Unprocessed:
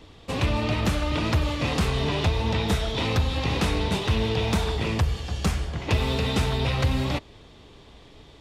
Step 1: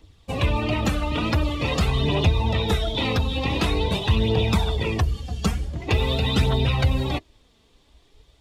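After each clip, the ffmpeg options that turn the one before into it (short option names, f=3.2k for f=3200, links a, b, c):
-af "aphaser=in_gain=1:out_gain=1:delay=4.6:decay=0.33:speed=0.46:type=triangular,afftdn=nr=14:nf=-31,crystalizer=i=2:c=0,volume=1.5dB"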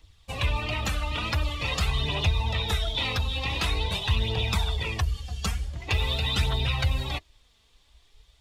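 -af "equalizer=f=280:w=0.48:g=-14"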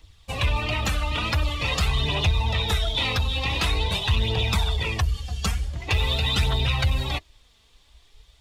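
-af "asoftclip=type=tanh:threshold=-16dB,volume=4dB"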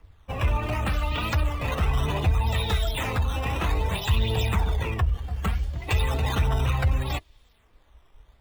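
-filter_complex "[0:a]highshelf=f=3k:g=-7.5,acrossover=split=300|2800[a][b][c];[c]acrusher=samples=11:mix=1:aa=0.000001:lfo=1:lforange=17.6:lforate=0.65[d];[a][b][d]amix=inputs=3:normalize=0"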